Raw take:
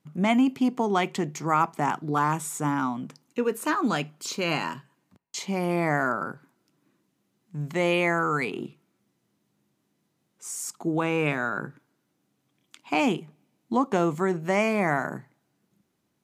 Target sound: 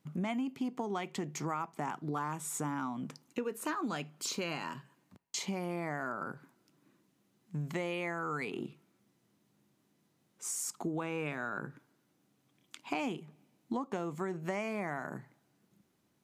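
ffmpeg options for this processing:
ffmpeg -i in.wav -af "acompressor=threshold=-34dB:ratio=5" out.wav

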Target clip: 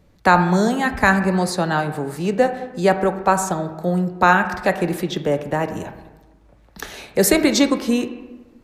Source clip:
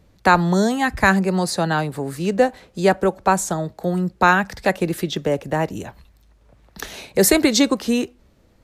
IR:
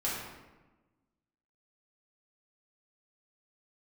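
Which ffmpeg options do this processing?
-filter_complex "[0:a]asplit=2[link_01][link_02];[1:a]atrim=start_sample=2205,lowpass=3000,lowshelf=frequency=380:gain=-5[link_03];[link_02][link_03]afir=irnorm=-1:irlink=0,volume=-11dB[link_04];[link_01][link_04]amix=inputs=2:normalize=0,volume=-1.5dB"

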